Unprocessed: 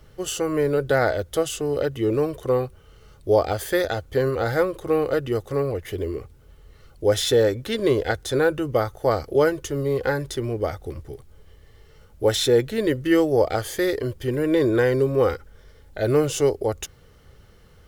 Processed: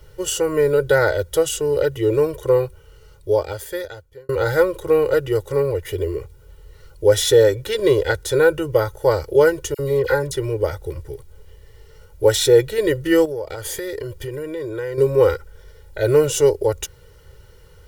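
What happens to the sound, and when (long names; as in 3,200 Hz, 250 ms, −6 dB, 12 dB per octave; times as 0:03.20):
0:02.65–0:04.29: fade out
0:09.74–0:10.34: all-pass dispersion lows, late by 50 ms, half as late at 1,900 Hz
0:13.25–0:14.98: downward compressor 8 to 1, threshold −28 dBFS
whole clip: high-shelf EQ 6,100 Hz +4.5 dB; comb filter 2.1 ms, depth 99%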